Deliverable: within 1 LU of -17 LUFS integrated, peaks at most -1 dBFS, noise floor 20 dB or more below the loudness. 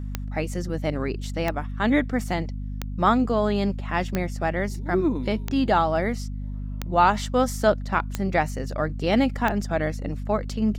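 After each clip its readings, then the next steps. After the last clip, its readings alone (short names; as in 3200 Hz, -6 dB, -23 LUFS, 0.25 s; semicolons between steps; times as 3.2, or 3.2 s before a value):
clicks 8; hum 50 Hz; harmonics up to 250 Hz; hum level -29 dBFS; loudness -25.0 LUFS; peak -6.0 dBFS; loudness target -17.0 LUFS
-> de-click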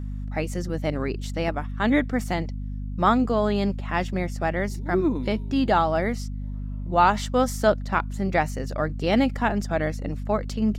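clicks 0; hum 50 Hz; harmonics up to 250 Hz; hum level -29 dBFS
-> notches 50/100/150/200/250 Hz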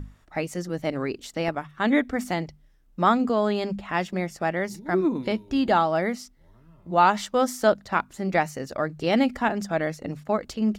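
hum none; loudness -25.5 LUFS; peak -6.5 dBFS; loudness target -17.0 LUFS
-> gain +8.5 dB; limiter -1 dBFS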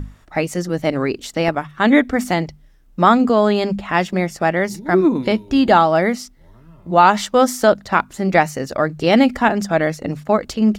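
loudness -17.0 LUFS; peak -1.0 dBFS; noise floor -49 dBFS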